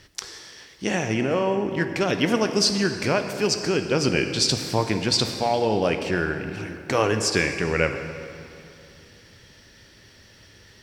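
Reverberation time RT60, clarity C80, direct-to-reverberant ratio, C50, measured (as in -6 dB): 2.7 s, 8.5 dB, 6.5 dB, 7.5 dB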